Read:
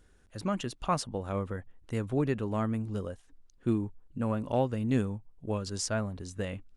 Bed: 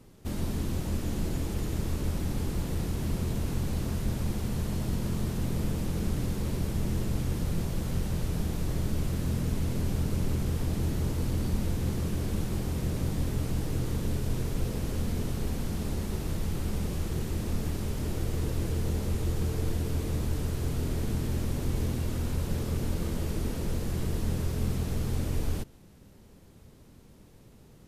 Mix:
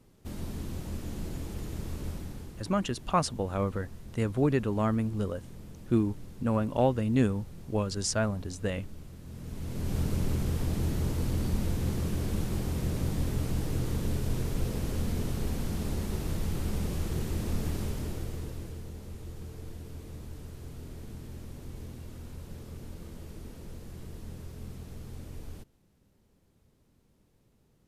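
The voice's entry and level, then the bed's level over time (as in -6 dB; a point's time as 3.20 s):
2.25 s, +3.0 dB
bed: 2.10 s -6 dB
2.69 s -16.5 dB
9.23 s -16.5 dB
9.98 s -0.5 dB
17.82 s -0.5 dB
18.90 s -13 dB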